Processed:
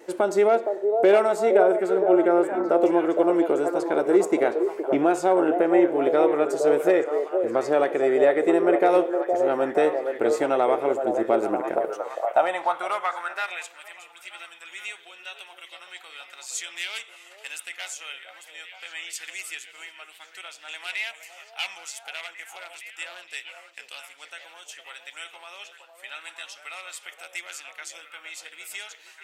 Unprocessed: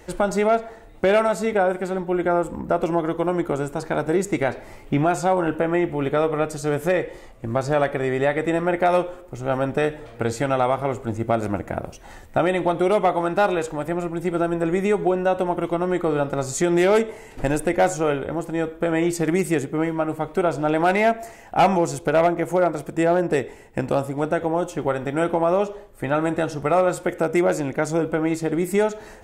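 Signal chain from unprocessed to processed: delay with a stepping band-pass 0.465 s, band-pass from 530 Hz, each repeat 0.7 oct, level -3 dB; wow and flutter 23 cents; high-pass sweep 360 Hz -> 2900 Hz, 11.71–13.88; gain -4 dB

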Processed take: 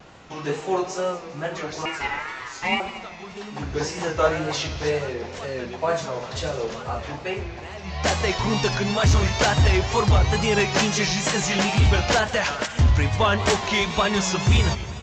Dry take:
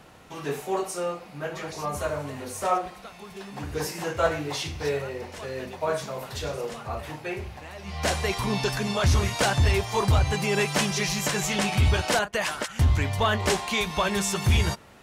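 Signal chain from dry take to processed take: 1.85–2.8 ring modulator 1500 Hz; downsampling 16000 Hz; in parallel at -10.5 dB: hard clip -19 dBFS, distortion -15 dB; on the sum: multi-head echo 81 ms, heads second and third, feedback 51%, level -16 dB; wow and flutter 96 cents; gain +1.5 dB

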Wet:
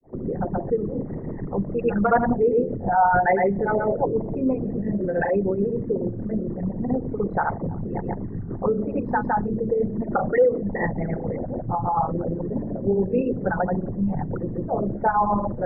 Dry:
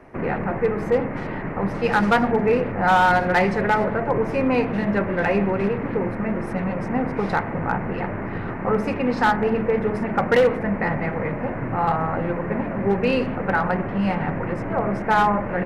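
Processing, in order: formant sharpening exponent 3; grains 0.259 s, grains 6.9/s, spray 0.1 s, pitch spread up and down by 0 st

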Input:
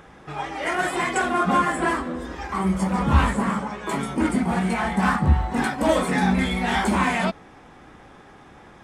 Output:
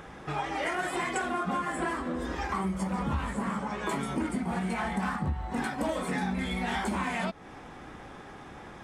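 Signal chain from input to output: compressor 6:1, threshold -30 dBFS, peak gain reduction 17.5 dB; gain +1.5 dB

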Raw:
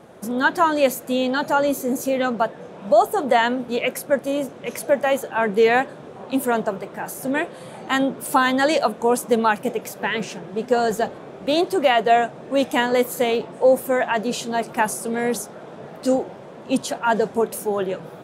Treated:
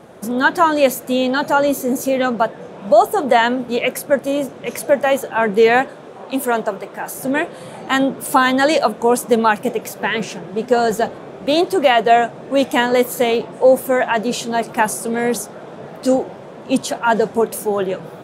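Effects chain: 5.88–7.14 low shelf 190 Hz -10.5 dB; gain +4 dB

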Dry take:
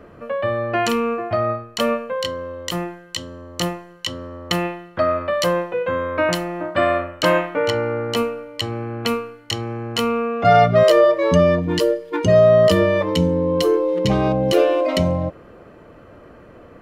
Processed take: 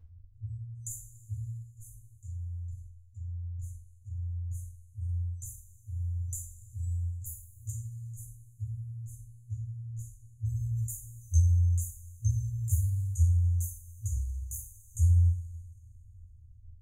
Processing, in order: dynamic EQ 370 Hz, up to +5 dB, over -32 dBFS, Q 2.7; low-pass opened by the level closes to 580 Hz, open at -13.5 dBFS; bell 3400 Hz -10.5 dB 1.8 oct; FFT band-reject 110–6100 Hz; on a send: flutter echo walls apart 9 m, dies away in 0.2 s; on the sum: two-slope reverb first 0.41 s, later 2.4 s, from -20 dB, DRR -7.5 dB; gain -5 dB

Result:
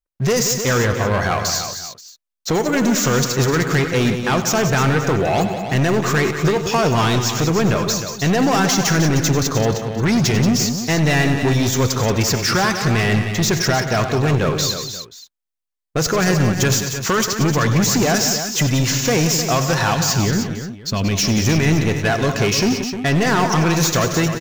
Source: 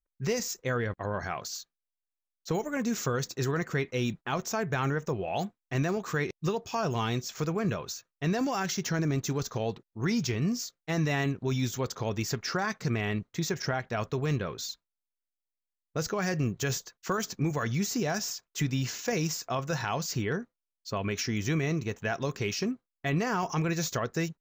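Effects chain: 19.94–21.38 band shelf 910 Hz -9 dB 2.8 oct; sample leveller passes 3; tapped delay 87/98/181/307/531 ms -17.5/-13.5/-9.5/-9.5/-19 dB; gain +6 dB

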